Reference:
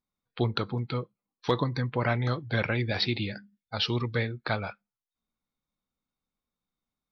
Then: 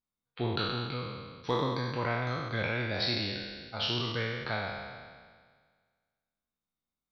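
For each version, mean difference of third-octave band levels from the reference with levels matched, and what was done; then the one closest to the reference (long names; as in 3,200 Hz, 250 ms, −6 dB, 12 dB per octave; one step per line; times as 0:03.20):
7.5 dB: peak hold with a decay on every bin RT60 1.71 s
level −7.5 dB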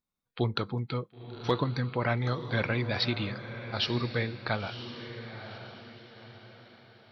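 3.5 dB: feedback delay with all-pass diffusion 987 ms, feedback 40%, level −10.5 dB
level −1.5 dB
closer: second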